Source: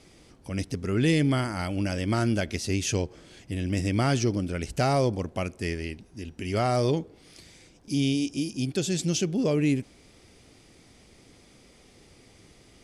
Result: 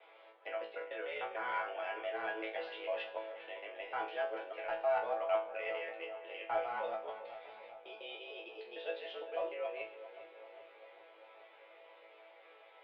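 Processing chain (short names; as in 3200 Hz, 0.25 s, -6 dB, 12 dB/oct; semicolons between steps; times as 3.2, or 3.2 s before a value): local time reversal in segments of 0.151 s; reverse; compressor 6:1, threshold -31 dBFS, peak gain reduction 11 dB; reverse; mistuned SSB +100 Hz 470–3500 Hz; in parallel at -11 dB: overloaded stage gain 35.5 dB; on the sum: air absorption 400 m; resonator bank A2 fifth, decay 0.37 s; darkening echo 0.4 s, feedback 64%, low-pass 2000 Hz, level -12 dB; gain +16 dB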